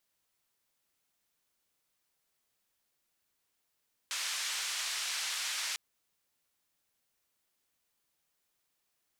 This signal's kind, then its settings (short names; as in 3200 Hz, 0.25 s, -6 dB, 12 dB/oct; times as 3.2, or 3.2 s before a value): noise band 1400–6600 Hz, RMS -36 dBFS 1.65 s